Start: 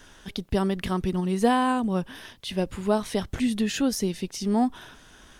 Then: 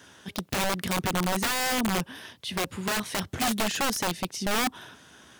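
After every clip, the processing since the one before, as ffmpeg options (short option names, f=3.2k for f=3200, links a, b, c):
-af "highpass=f=85:w=0.5412,highpass=f=85:w=1.3066,aeval=exprs='(mod(11.2*val(0)+1,2)-1)/11.2':c=same"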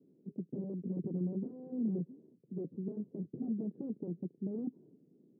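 -af "asuperpass=centerf=250:order=8:qfactor=0.85,volume=-5dB"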